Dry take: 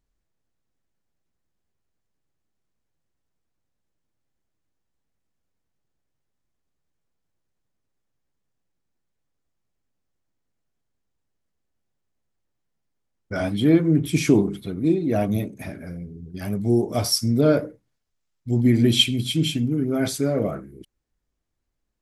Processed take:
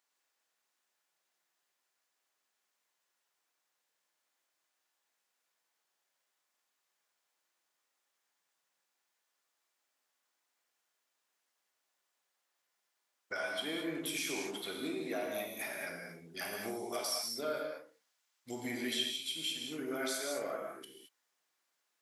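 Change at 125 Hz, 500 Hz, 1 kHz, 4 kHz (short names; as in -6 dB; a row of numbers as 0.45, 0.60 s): -33.0, -15.0, -8.5, -12.0 dB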